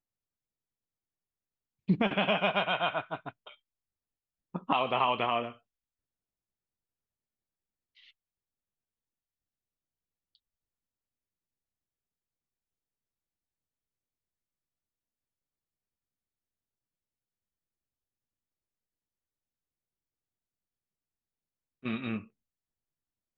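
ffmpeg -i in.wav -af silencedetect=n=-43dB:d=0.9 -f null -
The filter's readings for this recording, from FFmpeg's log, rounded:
silence_start: 0.00
silence_end: 1.89 | silence_duration: 1.89
silence_start: 3.51
silence_end: 4.55 | silence_duration: 1.04
silence_start: 5.52
silence_end: 21.84 | silence_duration: 16.32
silence_start: 22.24
silence_end: 23.38 | silence_duration: 1.14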